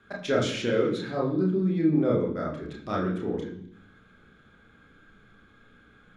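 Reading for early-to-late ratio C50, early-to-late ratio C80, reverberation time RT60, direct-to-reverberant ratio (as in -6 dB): 6.5 dB, 10.0 dB, 0.70 s, -2.5 dB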